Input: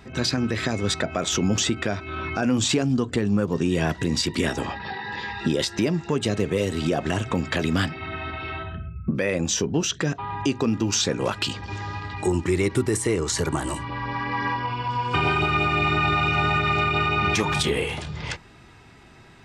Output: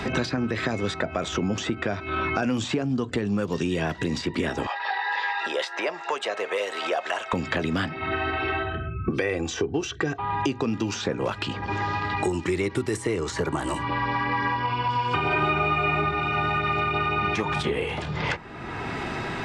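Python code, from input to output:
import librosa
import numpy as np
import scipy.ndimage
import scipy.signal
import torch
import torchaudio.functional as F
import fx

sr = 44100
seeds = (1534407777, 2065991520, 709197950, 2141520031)

y = fx.highpass(x, sr, hz=600.0, slope=24, at=(4.67, 7.33))
y = fx.comb(y, sr, ms=2.6, depth=0.65, at=(8.11, 10.2))
y = fx.reverb_throw(y, sr, start_s=15.27, length_s=0.69, rt60_s=1.0, drr_db=-7.0)
y = fx.lowpass(y, sr, hz=1900.0, slope=6)
y = fx.low_shelf(y, sr, hz=290.0, db=-6.0)
y = fx.band_squash(y, sr, depth_pct=100)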